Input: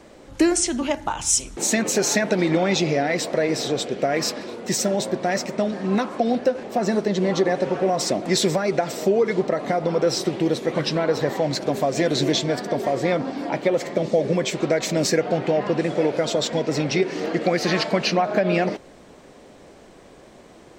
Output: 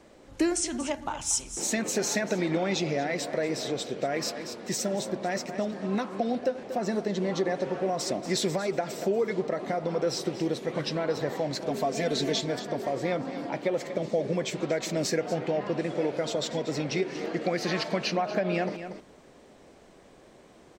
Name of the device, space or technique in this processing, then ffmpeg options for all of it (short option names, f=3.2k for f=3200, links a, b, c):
ducked delay: -filter_complex "[0:a]asettb=1/sr,asplit=3[a][b][c];[a]atrim=end=11.704[d];[b]atrim=start=11.7:end=12.41,asetpts=PTS-STARTPTS,afade=t=in:d=0.004:c=qsin,afade=t=out:st=0.706:d=0.004:c=qsin,aecho=1:1:4.5:0.68,atrim=end_sample=31311[e];[c]atrim=start=12.406[f];[d][e]acrossfade=d=0.004:c1=hsin:c2=qsin[g];[g][f]acrossfade=d=0.004:c1=qsin:c2=hsin,asplit=3[h][i][j];[i]adelay=236,volume=-8dB[k];[j]apad=whole_len=926940[l];[k][l]sidechaincompress=threshold=-25dB:ratio=8:attack=16:release=350[m];[h][m]amix=inputs=2:normalize=0,volume=-7.5dB"